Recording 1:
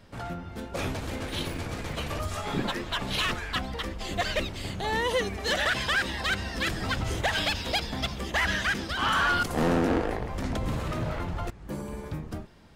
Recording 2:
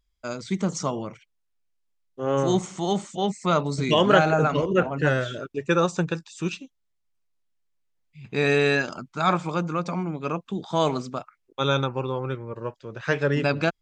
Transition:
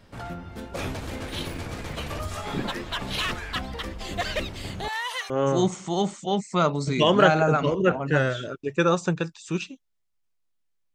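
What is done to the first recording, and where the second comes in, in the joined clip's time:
recording 1
0:04.88–0:05.30: high-pass filter 840 Hz 24 dB per octave
0:05.30: continue with recording 2 from 0:02.21

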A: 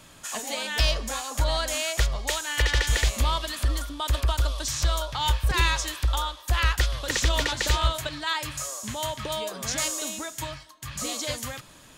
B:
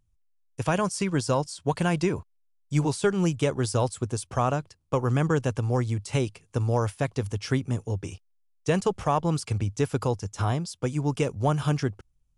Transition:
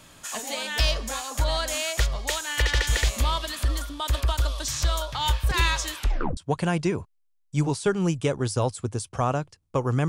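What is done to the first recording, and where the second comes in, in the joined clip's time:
A
0:05.96: tape stop 0.41 s
0:06.37: continue with B from 0:01.55

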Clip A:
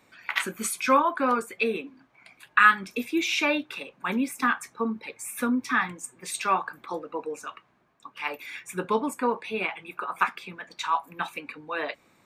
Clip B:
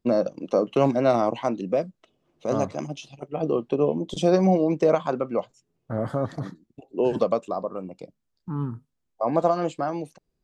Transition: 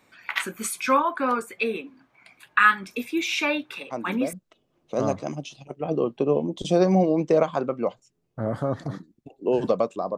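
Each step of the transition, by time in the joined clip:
clip A
0:03.90: mix in clip B from 0:01.42 0.43 s −7 dB
0:04.33: continue with clip B from 0:01.85

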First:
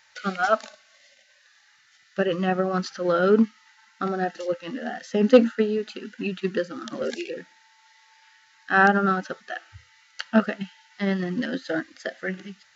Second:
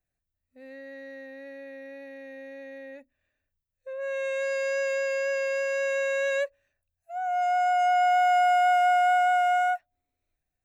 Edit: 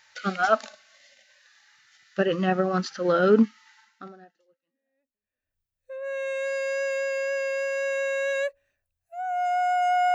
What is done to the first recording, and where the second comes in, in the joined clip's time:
first
0:04.68: continue with second from 0:02.65, crossfade 1.80 s exponential

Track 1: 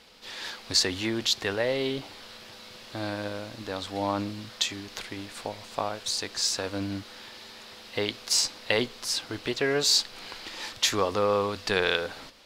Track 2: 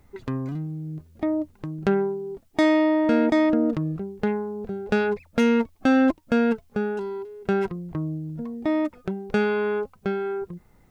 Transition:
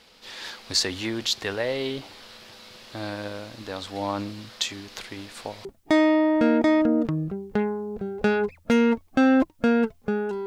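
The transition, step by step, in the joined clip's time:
track 1
0:05.65: continue with track 2 from 0:02.33

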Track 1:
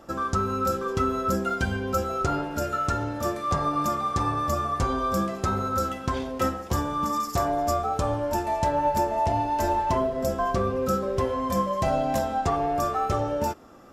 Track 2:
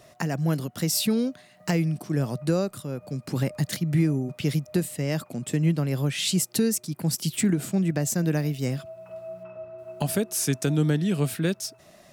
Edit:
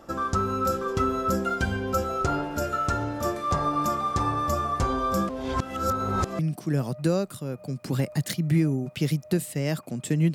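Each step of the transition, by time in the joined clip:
track 1
0:05.29–0:06.39: reverse
0:06.39: continue with track 2 from 0:01.82

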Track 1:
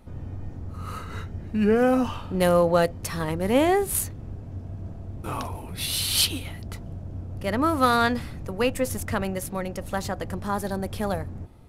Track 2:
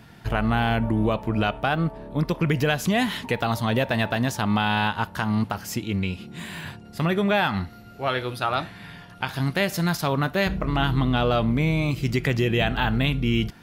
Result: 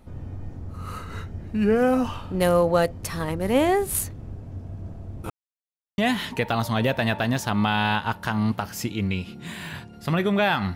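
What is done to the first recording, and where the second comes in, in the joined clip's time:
track 1
0:05.30–0:05.98: silence
0:05.98: continue with track 2 from 0:02.90

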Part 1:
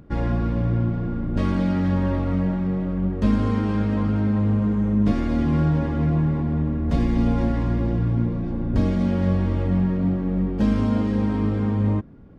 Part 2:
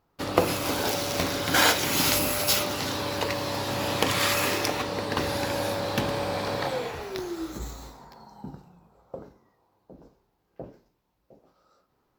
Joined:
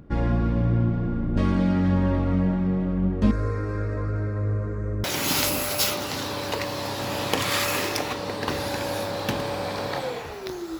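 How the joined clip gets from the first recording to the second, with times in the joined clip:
part 1
0:03.31–0:05.04: phaser with its sweep stopped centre 840 Hz, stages 6
0:05.04: continue with part 2 from 0:01.73

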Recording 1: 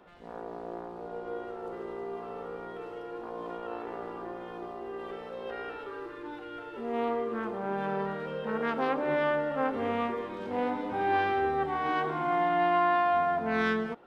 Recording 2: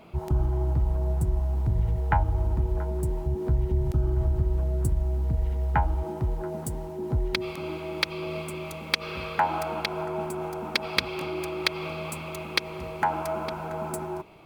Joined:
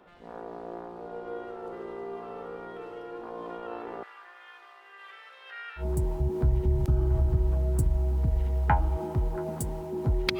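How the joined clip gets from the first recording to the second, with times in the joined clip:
recording 1
0:04.03–0:05.86: high-pass with resonance 1,800 Hz, resonance Q 1.6
0:05.81: continue with recording 2 from 0:02.87, crossfade 0.10 s

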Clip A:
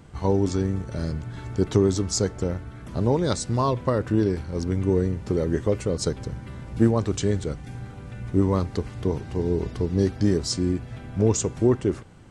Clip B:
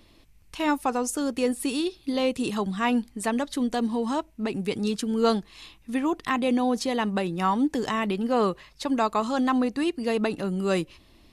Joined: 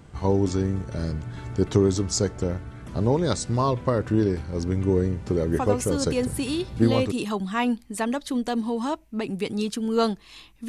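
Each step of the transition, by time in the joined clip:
clip A
0:06.32: continue with clip B from 0:01.58, crossfade 1.60 s logarithmic

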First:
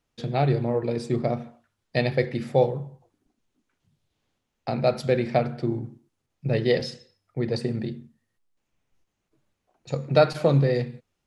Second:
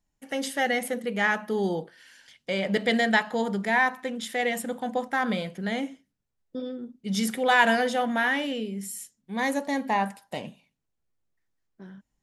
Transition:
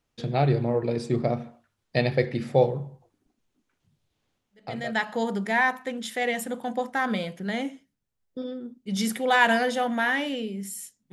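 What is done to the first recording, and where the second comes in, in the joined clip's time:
first
0:04.80: continue with second from 0:02.98, crossfade 0.64 s quadratic

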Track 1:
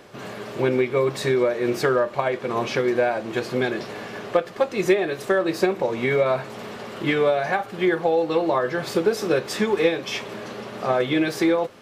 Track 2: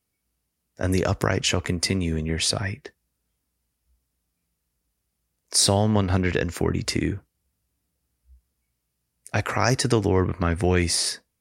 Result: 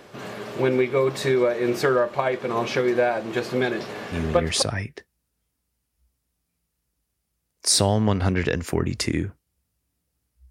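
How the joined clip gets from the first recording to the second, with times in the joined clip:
track 1
0:04.37: continue with track 2 from 0:02.25, crossfade 0.50 s logarithmic

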